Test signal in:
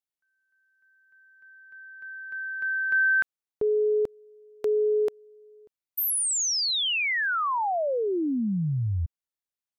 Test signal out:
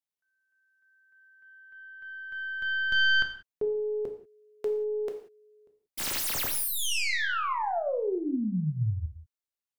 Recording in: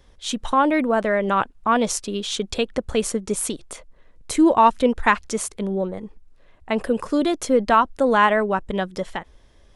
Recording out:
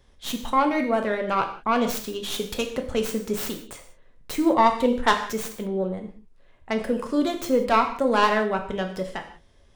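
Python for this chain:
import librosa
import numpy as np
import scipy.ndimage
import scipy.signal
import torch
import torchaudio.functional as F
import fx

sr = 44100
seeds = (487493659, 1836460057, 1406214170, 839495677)

y = fx.tracing_dist(x, sr, depth_ms=0.23)
y = fx.rev_gated(y, sr, seeds[0], gate_ms=210, shape='falling', drr_db=4.0)
y = F.gain(torch.from_numpy(y), -4.5).numpy()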